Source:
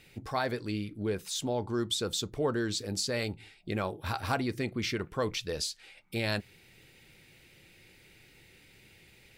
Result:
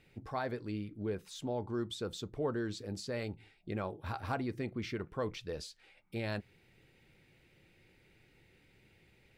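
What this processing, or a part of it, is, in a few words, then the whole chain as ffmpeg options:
through cloth: -af "highshelf=f=2.9k:g=-12,volume=-4.5dB"

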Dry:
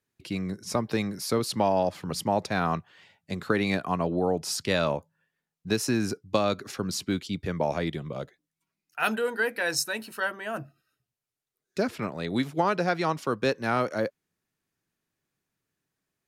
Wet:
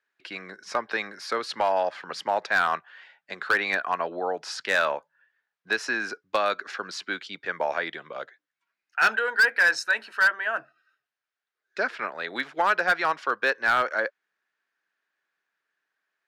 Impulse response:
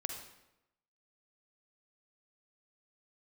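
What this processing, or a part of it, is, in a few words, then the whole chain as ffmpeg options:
megaphone: -af "highpass=640,lowpass=3.9k,equalizer=f=1.6k:t=o:w=0.52:g=10,asoftclip=type=hard:threshold=-17.5dB,volume=3dB"

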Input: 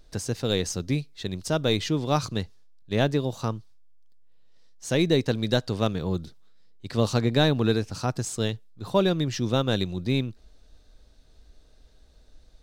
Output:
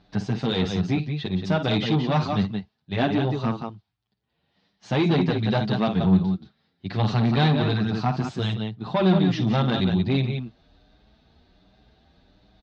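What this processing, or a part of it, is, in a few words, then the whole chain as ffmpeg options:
barber-pole flanger into a guitar amplifier: -filter_complex "[0:a]aecho=1:1:52.48|177.8:0.251|0.398,asplit=2[a][b];[b]adelay=8,afreqshift=1.3[c];[a][c]amix=inputs=2:normalize=1,asoftclip=type=tanh:threshold=-23.5dB,highpass=80,equalizer=f=190:t=q:w=4:g=9,equalizer=f=510:t=q:w=4:g=-7,equalizer=f=770:t=q:w=4:g=6,lowpass=f=4k:w=0.5412,lowpass=f=4k:w=1.3066,volume=7dB"

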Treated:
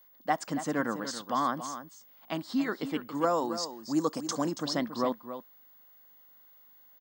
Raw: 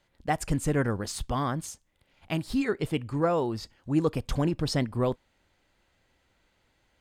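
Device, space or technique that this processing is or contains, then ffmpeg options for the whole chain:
old television with a line whistle: -filter_complex "[0:a]asettb=1/sr,asplit=3[a][b][c];[a]atrim=end=3.154[d];[b]atrim=start=3.15:end=4.57,asetpts=PTS-STARTPTS,afade=t=in:d=0.004:c=qsin,afade=t=out:st=1.416:d=0.004:c=qsin,highshelf=f=4.6k:t=q:w=1.5:g=11.5[e];[c]atrim=start=4.566[f];[d][e]acrossfade=d=0.004:c1=hsin:c2=qsin[g];[g][f]acrossfade=d=0.004:c1=qsin:c2=hsin,highpass=f=220:w=0.5412,highpass=f=220:w=1.3066,equalizer=f=410:t=q:w=4:g=-10,equalizer=f=1.1k:t=q:w=4:g=5,equalizer=f=2.5k:t=q:w=4:g=-10,lowpass=f=7k:w=0.5412,lowpass=f=7k:w=1.3066,aeval=exprs='val(0)+0.00141*sin(2*PI*15625*n/s)':c=same,aecho=1:1:279:0.282"

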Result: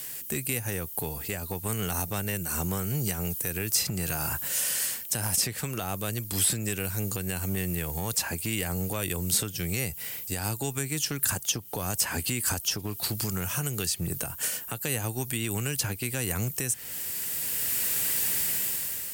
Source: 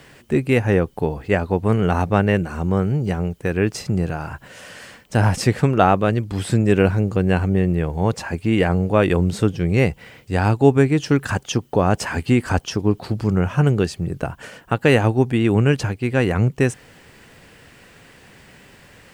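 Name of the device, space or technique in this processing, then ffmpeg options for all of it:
FM broadcast chain: -filter_complex "[0:a]highpass=46,dynaudnorm=f=230:g=7:m=11.5dB,acrossover=split=140|990|4200[a][b][c][d];[a]acompressor=threshold=-24dB:ratio=4[e];[b]acompressor=threshold=-24dB:ratio=4[f];[c]acompressor=threshold=-31dB:ratio=4[g];[d]acompressor=threshold=-43dB:ratio=4[h];[e][f][g][h]amix=inputs=4:normalize=0,aemphasis=mode=production:type=75fm,alimiter=limit=-15dB:level=0:latency=1:release=213,asoftclip=type=hard:threshold=-17dB,lowpass=f=15k:w=0.5412,lowpass=f=15k:w=1.3066,aemphasis=mode=production:type=75fm,volume=-6dB"

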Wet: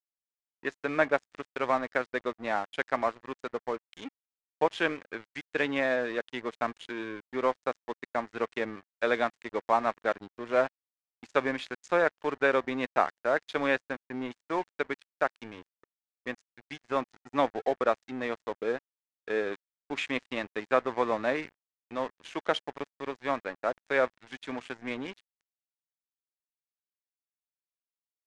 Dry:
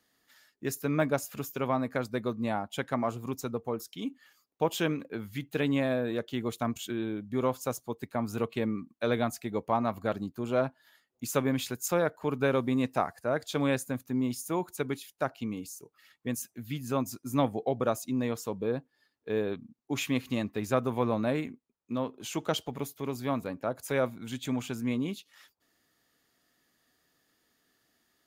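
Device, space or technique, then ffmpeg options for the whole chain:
pocket radio on a weak battery: -af "highpass=400,lowpass=3.3k,aeval=exprs='sgn(val(0))*max(abs(val(0))-0.00501,0)':c=same,lowpass=f=8.3k:w=0.5412,lowpass=f=8.3k:w=1.3066,equalizer=f=1.8k:t=o:w=0.55:g=6,volume=4dB"

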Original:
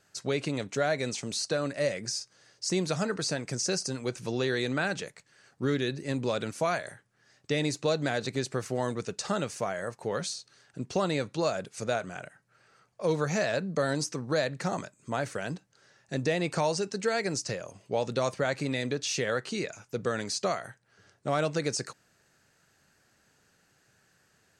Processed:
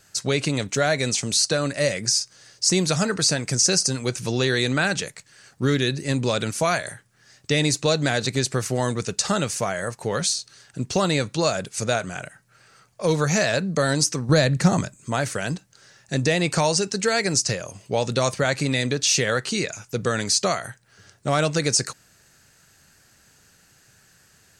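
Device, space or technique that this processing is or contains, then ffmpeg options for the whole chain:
smiley-face EQ: -filter_complex "[0:a]lowshelf=f=100:g=7,equalizer=f=460:t=o:w=2.8:g=-3.5,highshelf=f=5.1k:g=7.5,asettb=1/sr,asplit=3[a][b][c];[a]atrim=end=14.294[d];[b]atrim=start=14.29:end=14.97,asetpts=PTS-STARTPTS,afade=t=in:d=0.004:c=qsin,afade=t=out:st=0.676:d=0.004:c=qsin,lowshelf=f=260:g=11[e];[c]atrim=start=14.966[f];[d][e]acrossfade=d=0.004:c1=hsin:c2=qsin[g];[g][f]acrossfade=d=0.004:c1=qsin:c2=hsin,volume=8.5dB"

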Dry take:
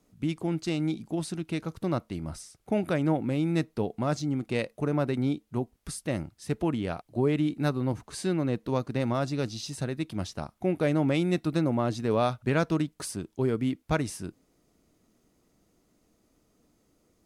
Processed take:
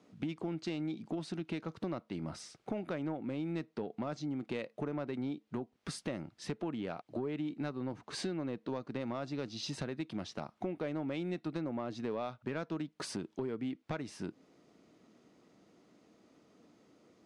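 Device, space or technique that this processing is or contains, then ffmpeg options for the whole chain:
AM radio: -af "highpass=170,lowpass=4.4k,acompressor=threshold=-40dB:ratio=6,asoftclip=type=tanh:threshold=-31dB,volume=5.5dB"

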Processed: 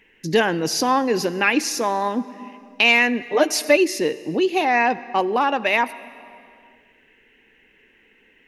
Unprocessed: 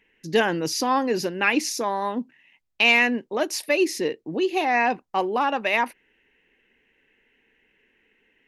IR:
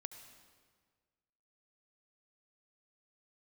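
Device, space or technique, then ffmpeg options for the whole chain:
ducked reverb: -filter_complex "[0:a]asplit=3[a][b][c];[1:a]atrim=start_sample=2205[d];[b][d]afir=irnorm=-1:irlink=0[e];[c]apad=whole_len=373709[f];[e][f]sidechaincompress=threshold=-28dB:ratio=6:attack=7:release=806,volume=8.5dB[g];[a][g]amix=inputs=2:normalize=0,asettb=1/sr,asplit=3[h][i][j];[h]atrim=end=3.214[k];[i]atrim=start=3.21:end=3.77,asetpts=PTS-STARTPTS,afade=t=in:d=0.004:c=qsin,afade=t=out:st=0.556:d=0.004:c=qsin,aecho=1:1:6.7:0.9,atrim=end_sample=24696[l];[j]atrim=start=3.766[m];[k][l]acrossfade=d=0.004:c1=hsin:c2=qsin[n];[n][m]acrossfade=d=0.004:c1=qsin:c2=hsin"

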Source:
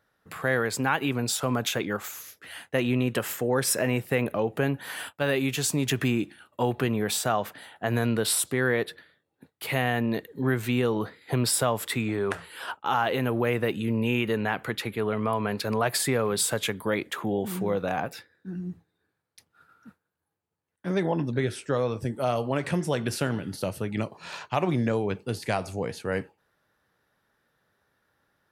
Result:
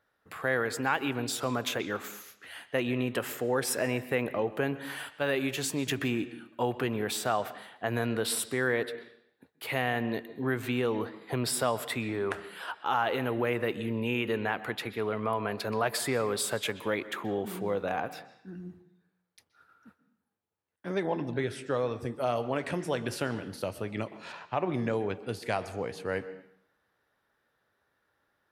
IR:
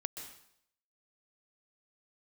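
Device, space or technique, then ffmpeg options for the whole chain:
filtered reverb send: -filter_complex "[0:a]asettb=1/sr,asplit=3[a][b][c];[a]atrim=end=24.324[d];[b]atrim=start=24.32:end=24.74,asetpts=PTS-STARTPTS,afade=t=in:d=0.004:c=qsin,afade=t=out:st=0.416:d=0.004:c=qsin,lowpass=f=1.7k:p=1[e];[c]atrim=start=24.736[f];[d][e]acrossfade=d=0.004:c1=hsin:c2=qsin[g];[g][f]acrossfade=d=0.004:c1=qsin:c2=hsin,asplit=2[h][i];[i]highpass=f=150:w=0.5412,highpass=f=150:w=1.3066,lowpass=4.8k[j];[1:a]atrim=start_sample=2205[k];[j][k]afir=irnorm=-1:irlink=0,volume=-5dB[l];[h][l]amix=inputs=2:normalize=0,volume=-6dB"

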